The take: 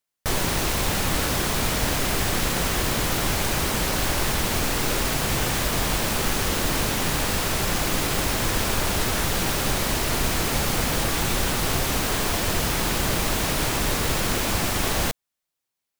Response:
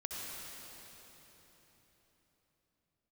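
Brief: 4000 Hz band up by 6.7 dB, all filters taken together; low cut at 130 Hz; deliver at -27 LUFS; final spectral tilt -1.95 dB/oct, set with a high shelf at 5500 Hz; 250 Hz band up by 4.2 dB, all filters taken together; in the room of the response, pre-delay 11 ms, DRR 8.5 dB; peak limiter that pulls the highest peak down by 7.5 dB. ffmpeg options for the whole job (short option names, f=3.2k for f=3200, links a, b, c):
-filter_complex "[0:a]highpass=130,equalizer=f=250:t=o:g=6,equalizer=f=4k:t=o:g=5.5,highshelf=f=5.5k:g=7,alimiter=limit=-14.5dB:level=0:latency=1,asplit=2[a][b];[1:a]atrim=start_sample=2205,adelay=11[c];[b][c]afir=irnorm=-1:irlink=0,volume=-10dB[d];[a][d]amix=inputs=2:normalize=0,volume=-5.5dB"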